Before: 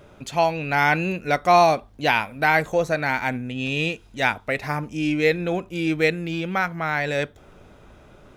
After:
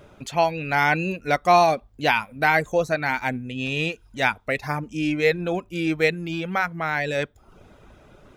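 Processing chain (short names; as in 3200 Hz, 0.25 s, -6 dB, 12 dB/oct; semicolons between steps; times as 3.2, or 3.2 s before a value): reverb removal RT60 0.54 s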